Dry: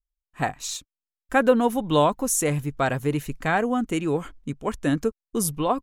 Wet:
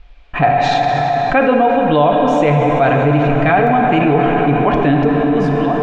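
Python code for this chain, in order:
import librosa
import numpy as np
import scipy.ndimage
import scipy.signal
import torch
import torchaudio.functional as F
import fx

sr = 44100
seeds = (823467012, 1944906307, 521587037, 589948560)

y = fx.fade_out_tail(x, sr, length_s=1.09)
y = scipy.signal.sosfilt(scipy.signal.butter(4, 3500.0, 'lowpass', fs=sr, output='sos'), y)
y = fx.peak_eq(y, sr, hz=520.0, db=fx.steps((0.0, 2.0), (3.67, -7.0)), octaves=0.24)
y = y + 0.32 * np.pad(y, (int(6.9 * sr / 1000.0), 0))[:len(y)]
y = fx.rev_plate(y, sr, seeds[0], rt60_s=4.9, hf_ratio=0.65, predelay_ms=0, drr_db=3.0)
y = fx.rider(y, sr, range_db=3, speed_s=0.5)
y = fx.small_body(y, sr, hz=(700.0, 2400.0), ring_ms=30, db=10)
y = fx.env_flatten(y, sr, amount_pct=70)
y = F.gain(torch.from_numpy(y), 1.0).numpy()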